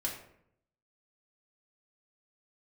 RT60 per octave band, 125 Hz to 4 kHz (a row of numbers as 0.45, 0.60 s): 0.95, 0.85, 0.75, 0.65, 0.60, 0.40 s